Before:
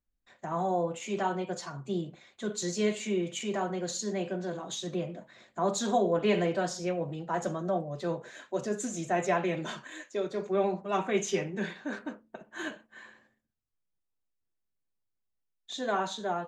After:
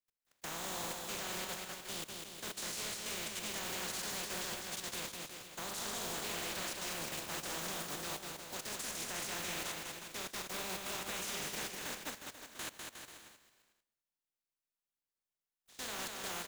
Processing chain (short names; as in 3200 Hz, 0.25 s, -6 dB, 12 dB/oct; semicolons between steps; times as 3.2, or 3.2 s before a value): spectral contrast lowered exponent 0.21; level quantiser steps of 19 dB; bouncing-ball echo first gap 0.2 s, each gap 0.8×, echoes 5; gain -4 dB